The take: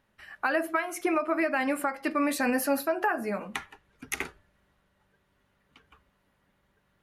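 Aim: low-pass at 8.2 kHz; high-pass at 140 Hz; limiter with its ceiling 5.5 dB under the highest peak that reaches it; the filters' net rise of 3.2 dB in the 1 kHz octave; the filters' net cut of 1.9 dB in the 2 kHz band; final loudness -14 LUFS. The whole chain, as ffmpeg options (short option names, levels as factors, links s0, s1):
-af "highpass=140,lowpass=8200,equalizer=f=1000:t=o:g=5.5,equalizer=f=2000:t=o:g=-4.5,volume=5.96,alimiter=limit=0.841:level=0:latency=1"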